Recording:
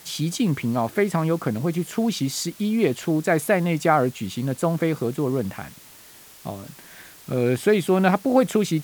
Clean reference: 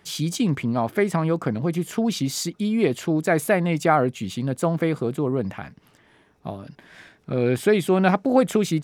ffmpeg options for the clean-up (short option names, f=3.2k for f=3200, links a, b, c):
-af "afwtdn=0.0045"